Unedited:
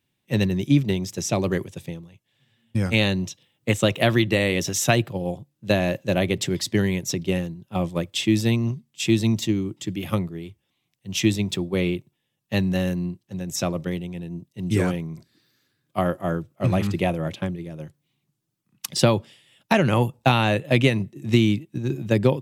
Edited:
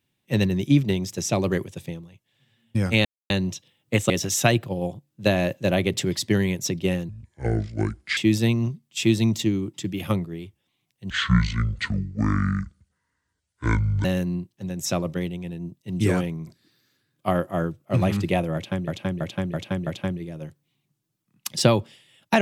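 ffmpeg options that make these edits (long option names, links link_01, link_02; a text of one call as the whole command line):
ffmpeg -i in.wav -filter_complex "[0:a]asplit=11[link_01][link_02][link_03][link_04][link_05][link_06][link_07][link_08][link_09][link_10][link_11];[link_01]atrim=end=3.05,asetpts=PTS-STARTPTS,afade=type=out:start_time=3.046:duration=0.004:curve=hsin,apad=pad_dur=0.25[link_12];[link_02]atrim=start=3.05:end=3.852,asetpts=PTS-STARTPTS,afade=type=in:duration=0.004:curve=hsin[link_13];[link_03]atrim=start=4.538:end=7.534[link_14];[link_04]atrim=start=7.53:end=8.2,asetpts=PTS-STARTPTS,asetrate=27342,aresample=44100,atrim=end_sample=47656,asetpts=PTS-STARTPTS[link_15];[link_05]atrim=start=8.196:end=11.134[link_16];[link_06]atrim=start=11.13:end=12.75,asetpts=PTS-STARTPTS,asetrate=24255,aresample=44100[link_17];[link_07]atrim=start=12.746:end=17.582[link_18];[link_08]atrim=start=17.248:end=17.582[link_19];[link_09]atrim=start=17.248:end=17.582[link_20];[link_10]atrim=start=17.248:end=17.582[link_21];[link_11]atrim=start=17.248[link_22];[link_12][link_13]concat=n=2:v=0:a=1[link_23];[link_23][link_14]acrossfade=duration=0.004:curve1=hsin:curve2=hsin[link_24];[link_24][link_15]acrossfade=duration=0.004:curve1=hsin:curve2=hsin[link_25];[link_25][link_16]acrossfade=duration=0.004:curve1=hsin:curve2=hsin[link_26];[link_26][link_17]acrossfade=duration=0.004:curve1=hsin:curve2=hsin[link_27];[link_27][link_18]acrossfade=duration=0.004:curve1=hsin:curve2=hsin[link_28];[link_28][link_19]acrossfade=duration=0.004:curve1=hsin:curve2=hsin[link_29];[link_29][link_20]acrossfade=duration=0.004:curve1=hsin:curve2=hsin[link_30];[link_30][link_21]acrossfade=duration=0.004:curve1=hsin:curve2=hsin[link_31];[link_31][link_22]acrossfade=duration=0.004:curve1=hsin:curve2=hsin" out.wav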